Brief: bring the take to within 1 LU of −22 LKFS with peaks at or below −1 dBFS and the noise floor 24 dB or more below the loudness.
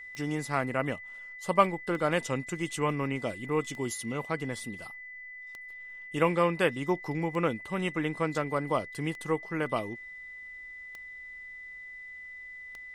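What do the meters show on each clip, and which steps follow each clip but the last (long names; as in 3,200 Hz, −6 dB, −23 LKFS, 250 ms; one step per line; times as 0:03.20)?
number of clicks 8; interfering tone 2,000 Hz; level of the tone −42 dBFS; integrated loudness −31.0 LKFS; sample peak −8.0 dBFS; target loudness −22.0 LKFS
→ click removal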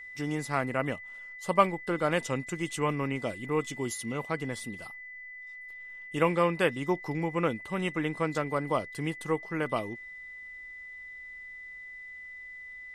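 number of clicks 0; interfering tone 2,000 Hz; level of the tone −42 dBFS
→ notch filter 2,000 Hz, Q 30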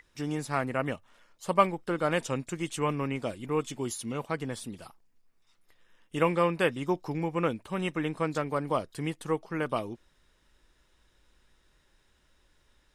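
interfering tone none found; integrated loudness −31.0 LKFS; sample peak −8.5 dBFS; target loudness −22.0 LKFS
→ level +9 dB
brickwall limiter −1 dBFS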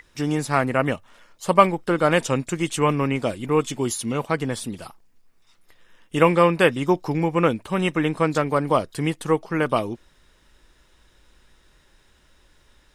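integrated loudness −22.0 LKFS; sample peak −1.0 dBFS; background noise floor −59 dBFS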